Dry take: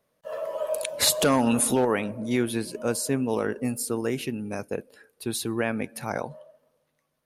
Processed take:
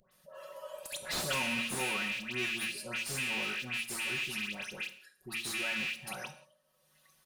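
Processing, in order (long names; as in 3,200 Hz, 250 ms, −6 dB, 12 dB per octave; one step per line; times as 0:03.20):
loose part that buzzes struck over −31 dBFS, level −14 dBFS
notch filter 2,200 Hz, Q 16
comb filter 5.4 ms, depth 85%
all-pass dispersion highs, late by 115 ms, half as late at 1,600 Hz
upward compression, threshold −40 dBFS
guitar amp tone stack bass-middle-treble 5-5-5
hum removal 56.7 Hz, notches 8
convolution reverb, pre-delay 3 ms, DRR 9 dB
slew-rate limiting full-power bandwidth 100 Hz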